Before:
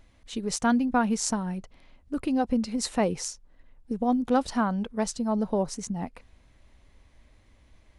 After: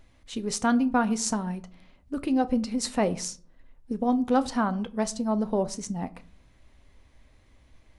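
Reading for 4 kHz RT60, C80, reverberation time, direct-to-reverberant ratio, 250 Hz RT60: 0.30 s, 24.5 dB, 0.45 s, 11.5 dB, 0.65 s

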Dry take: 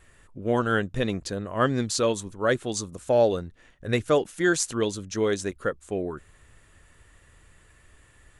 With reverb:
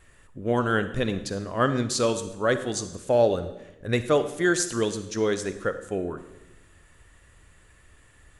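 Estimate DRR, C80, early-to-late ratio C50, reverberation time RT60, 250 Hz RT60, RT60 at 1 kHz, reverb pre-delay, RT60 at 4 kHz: 10.0 dB, 13.5 dB, 11.5 dB, 1.0 s, 1.2 s, 0.90 s, 36 ms, 0.85 s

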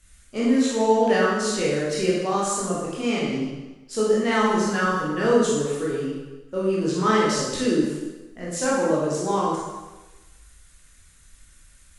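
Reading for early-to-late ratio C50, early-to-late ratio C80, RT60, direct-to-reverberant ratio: −0.5 dB, 2.5 dB, 1.2 s, −7.0 dB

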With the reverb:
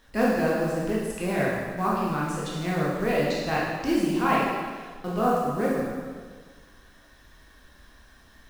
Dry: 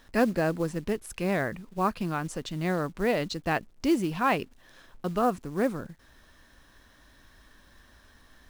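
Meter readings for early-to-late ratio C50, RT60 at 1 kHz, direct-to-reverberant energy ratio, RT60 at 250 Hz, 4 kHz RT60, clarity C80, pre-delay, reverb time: −0.5 dB, 1.6 s, −5.5 dB, 1.6 s, 1.5 s, 2.0 dB, 7 ms, 1.6 s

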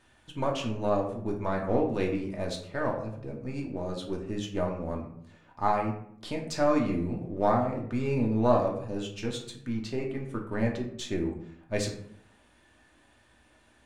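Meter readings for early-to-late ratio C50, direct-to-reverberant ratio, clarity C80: 7.0 dB, 0.0 dB, 10.5 dB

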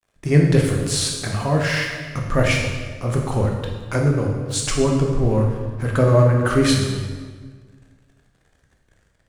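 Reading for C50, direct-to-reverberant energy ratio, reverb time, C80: 3.0 dB, 0.0 dB, 1.6 s, 5.0 dB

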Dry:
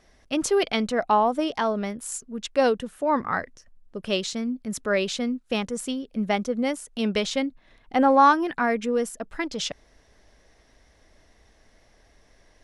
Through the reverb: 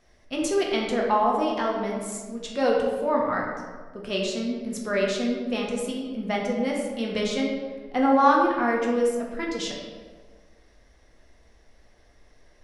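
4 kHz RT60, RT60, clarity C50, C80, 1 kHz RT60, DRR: 0.90 s, 1.5 s, 1.5 dB, 3.5 dB, 1.3 s, −2.0 dB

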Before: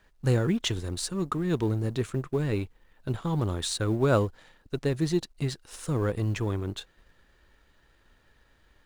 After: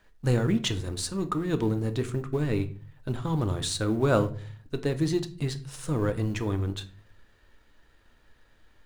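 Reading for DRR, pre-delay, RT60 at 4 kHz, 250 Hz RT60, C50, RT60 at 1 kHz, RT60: 8.5 dB, 3 ms, 0.30 s, 0.65 s, 16.0 dB, 0.35 s, 0.40 s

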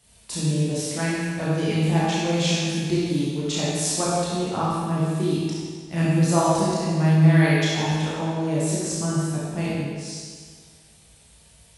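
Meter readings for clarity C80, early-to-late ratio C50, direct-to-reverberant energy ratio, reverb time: −1.5 dB, −4.0 dB, −8.5 dB, 1.7 s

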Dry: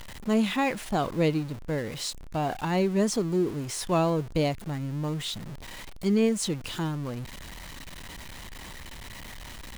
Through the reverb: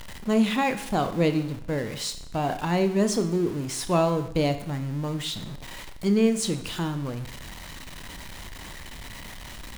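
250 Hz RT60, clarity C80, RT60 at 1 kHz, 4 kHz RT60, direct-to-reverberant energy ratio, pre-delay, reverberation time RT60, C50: 0.70 s, 15.5 dB, 0.70 s, 0.70 s, 9.0 dB, 23 ms, 0.70 s, 12.0 dB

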